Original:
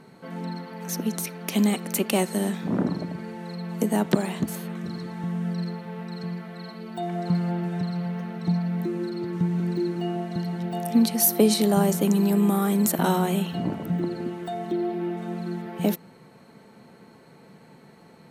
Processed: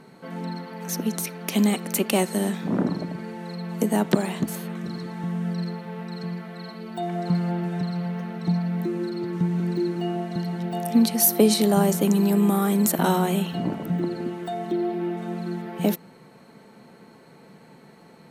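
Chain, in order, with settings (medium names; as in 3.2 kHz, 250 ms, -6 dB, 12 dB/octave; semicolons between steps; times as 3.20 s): peaking EQ 89 Hz -6.5 dB 0.77 oct; trim +1.5 dB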